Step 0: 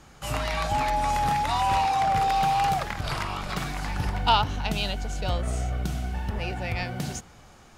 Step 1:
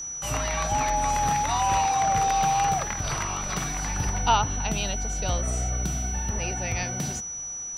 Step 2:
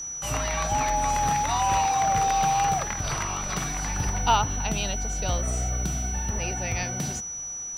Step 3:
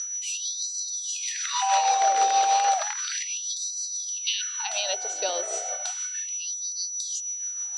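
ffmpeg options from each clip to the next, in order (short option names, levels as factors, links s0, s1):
-filter_complex "[0:a]acrossover=split=190|2900[s0][s1][s2];[s2]alimiter=level_in=1.26:limit=0.0631:level=0:latency=1:release=490,volume=0.794[s3];[s0][s1][s3]amix=inputs=3:normalize=0,aeval=exprs='val(0)+0.0251*sin(2*PI*5900*n/s)':c=same"
-af "acrusher=bits=9:mode=log:mix=0:aa=0.000001"
-af "tremolo=f=6.3:d=0.4,highpass=120,equalizer=f=310:t=q:w=4:g=-10,equalizer=f=590:t=q:w=4:g=4,equalizer=f=1100:t=q:w=4:g=-7,equalizer=f=2200:t=q:w=4:g=-4,equalizer=f=4200:t=q:w=4:g=7,lowpass=f=8100:w=0.5412,lowpass=f=8100:w=1.3066,afftfilt=real='re*gte(b*sr/1024,280*pow(3900/280,0.5+0.5*sin(2*PI*0.33*pts/sr)))':imag='im*gte(b*sr/1024,280*pow(3900/280,0.5+0.5*sin(2*PI*0.33*pts/sr)))':win_size=1024:overlap=0.75,volume=1.58"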